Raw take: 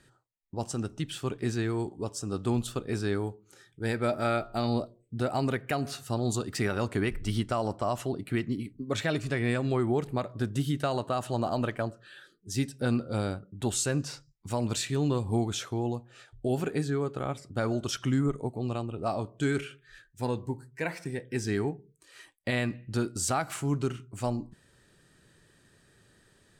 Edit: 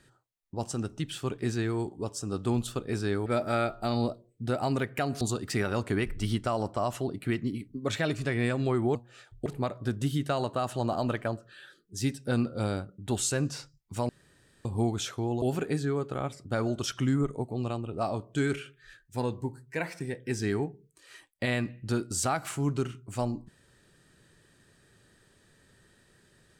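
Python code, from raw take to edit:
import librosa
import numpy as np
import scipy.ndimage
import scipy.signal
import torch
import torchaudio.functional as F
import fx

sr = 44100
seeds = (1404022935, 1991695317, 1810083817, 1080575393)

y = fx.edit(x, sr, fx.cut(start_s=3.26, length_s=0.72),
    fx.cut(start_s=5.93, length_s=0.33),
    fx.room_tone_fill(start_s=14.63, length_s=0.56),
    fx.move(start_s=15.96, length_s=0.51, to_s=10.0), tone=tone)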